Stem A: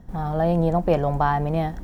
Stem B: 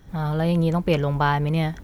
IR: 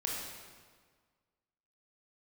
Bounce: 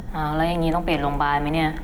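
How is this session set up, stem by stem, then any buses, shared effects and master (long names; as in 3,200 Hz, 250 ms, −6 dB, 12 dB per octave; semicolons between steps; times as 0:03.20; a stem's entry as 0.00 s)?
+2.5 dB, 0.00 s, no send, upward compression, threshold −29 dBFS
+2.0 dB, 0.00 s, polarity flipped, send −18 dB, thirty-one-band graphic EQ 200 Hz −10 dB, 315 Hz +9 dB, 2,000 Hz +3 dB, 5,000 Hz −11 dB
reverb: on, RT60 1.6 s, pre-delay 21 ms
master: brickwall limiter −11 dBFS, peak gain reduction 7.5 dB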